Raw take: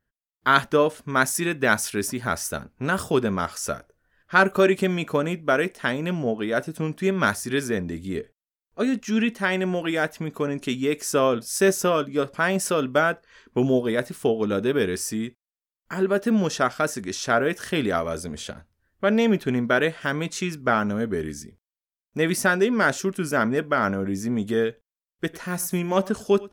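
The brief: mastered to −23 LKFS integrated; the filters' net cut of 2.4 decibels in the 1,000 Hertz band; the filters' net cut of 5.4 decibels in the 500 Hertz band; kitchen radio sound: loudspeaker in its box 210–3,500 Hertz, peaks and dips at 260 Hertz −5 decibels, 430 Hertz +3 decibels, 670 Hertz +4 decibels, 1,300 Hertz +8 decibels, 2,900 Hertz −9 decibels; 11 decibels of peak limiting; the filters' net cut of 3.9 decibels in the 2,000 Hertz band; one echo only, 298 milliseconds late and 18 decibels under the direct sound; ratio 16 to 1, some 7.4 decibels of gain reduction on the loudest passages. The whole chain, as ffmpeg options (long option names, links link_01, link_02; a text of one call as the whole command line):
ffmpeg -i in.wav -af "equalizer=frequency=500:width_type=o:gain=-7.5,equalizer=frequency=1000:width_type=o:gain=-8,equalizer=frequency=2000:width_type=o:gain=-4.5,acompressor=threshold=-26dB:ratio=16,alimiter=level_in=3dB:limit=-24dB:level=0:latency=1,volume=-3dB,highpass=210,equalizer=frequency=260:width_type=q:width=4:gain=-5,equalizer=frequency=430:width_type=q:width=4:gain=3,equalizer=frequency=670:width_type=q:width=4:gain=4,equalizer=frequency=1300:width_type=q:width=4:gain=8,equalizer=frequency=2900:width_type=q:width=4:gain=-9,lowpass=frequency=3500:width=0.5412,lowpass=frequency=3500:width=1.3066,aecho=1:1:298:0.126,volume=15dB" out.wav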